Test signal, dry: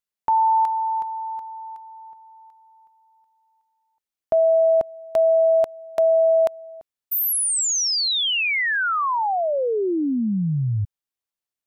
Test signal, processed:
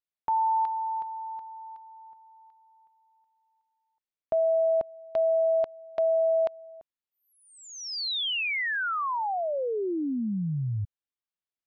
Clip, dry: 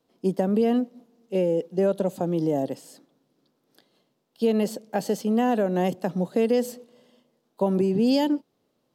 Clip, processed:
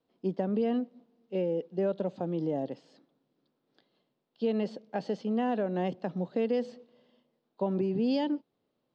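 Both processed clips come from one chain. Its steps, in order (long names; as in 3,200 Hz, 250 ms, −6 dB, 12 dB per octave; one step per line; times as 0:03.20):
low-pass filter 4,500 Hz 24 dB per octave
level −7 dB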